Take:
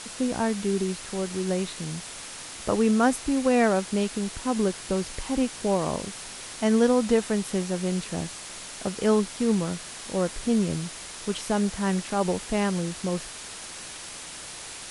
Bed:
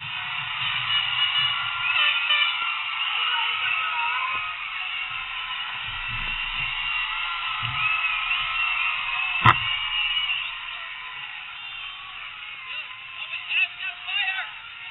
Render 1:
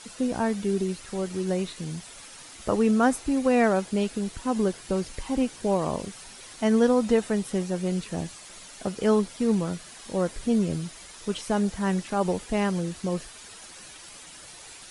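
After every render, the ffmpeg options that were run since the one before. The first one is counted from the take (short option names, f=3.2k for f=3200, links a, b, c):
-af "afftdn=nr=9:nf=-40"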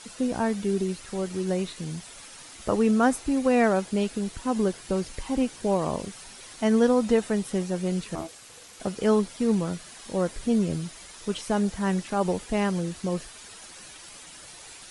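-filter_complex "[0:a]asettb=1/sr,asplit=3[a][b][c];[a]atrim=end=8.154[d];[b]atrim=start=8.15:end=8.8,asetpts=PTS-STARTPTS,afade=t=in:d=0.004:c=qsin,afade=t=out:st=0.646:d=0.004:c=qsin,aeval=exprs='val(0)*sin(2*PI*490*n/s)':c=same[e];[c]atrim=start=8.796[f];[d][e]acrossfade=d=0.004:c1=hsin:c2=qsin[g];[g][f]acrossfade=d=0.004:c1=qsin:c2=hsin"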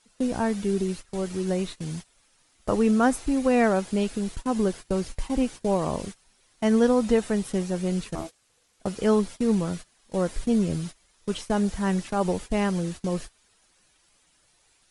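-af "agate=range=-19dB:threshold=-36dB:ratio=16:detection=peak,lowshelf=f=63:g=9.5"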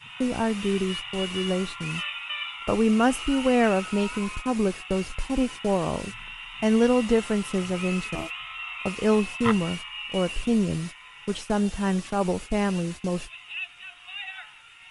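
-filter_complex "[1:a]volume=-11.5dB[a];[0:a][a]amix=inputs=2:normalize=0"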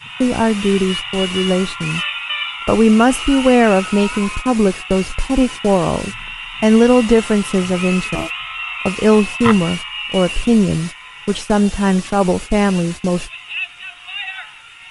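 -af "volume=10dB,alimiter=limit=-1dB:level=0:latency=1"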